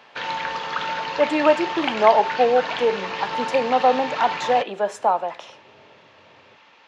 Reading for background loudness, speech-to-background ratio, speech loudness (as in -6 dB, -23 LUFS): -27.5 LUFS, 6.5 dB, -21.0 LUFS